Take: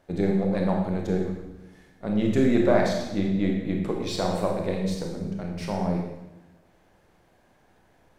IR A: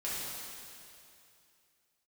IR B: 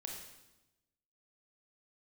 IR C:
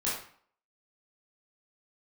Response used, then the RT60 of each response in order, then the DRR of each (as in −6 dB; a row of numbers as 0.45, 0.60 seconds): B; 2.6, 1.0, 0.55 seconds; −9.0, 0.0, −8.5 decibels